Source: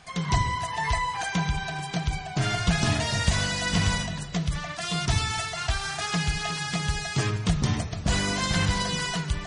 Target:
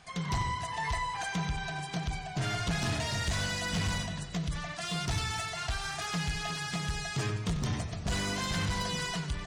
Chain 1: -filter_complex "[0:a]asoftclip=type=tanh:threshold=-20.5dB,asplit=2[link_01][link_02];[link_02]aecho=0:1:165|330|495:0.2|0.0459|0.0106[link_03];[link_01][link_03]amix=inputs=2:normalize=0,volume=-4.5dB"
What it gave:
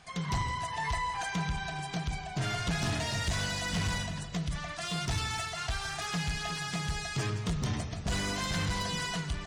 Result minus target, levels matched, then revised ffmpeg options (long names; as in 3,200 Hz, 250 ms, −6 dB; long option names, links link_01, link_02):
echo 72 ms late
-filter_complex "[0:a]asoftclip=type=tanh:threshold=-20.5dB,asplit=2[link_01][link_02];[link_02]aecho=0:1:93|186|279:0.2|0.0459|0.0106[link_03];[link_01][link_03]amix=inputs=2:normalize=0,volume=-4.5dB"